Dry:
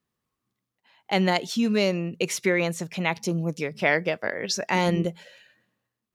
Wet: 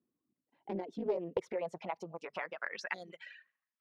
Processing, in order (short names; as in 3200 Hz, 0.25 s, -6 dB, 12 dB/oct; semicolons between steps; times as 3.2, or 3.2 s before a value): spectral gain 4.73–5.01, 800–3300 Hz -21 dB; reverb removal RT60 0.9 s; compressor 6:1, threshold -33 dBFS, peak gain reduction 15.5 dB; granular stretch 0.62×, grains 38 ms; band-pass sweep 290 Hz -> 1900 Hz, 0.6–3.13; Doppler distortion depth 0.27 ms; gain +7.5 dB